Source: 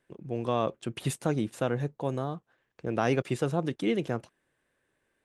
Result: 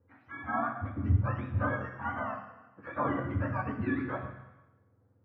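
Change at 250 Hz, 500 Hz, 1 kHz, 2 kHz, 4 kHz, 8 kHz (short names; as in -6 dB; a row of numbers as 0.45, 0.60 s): -4.0 dB, -8.5 dB, +1.0 dB, +3.0 dB, under -15 dB, under -35 dB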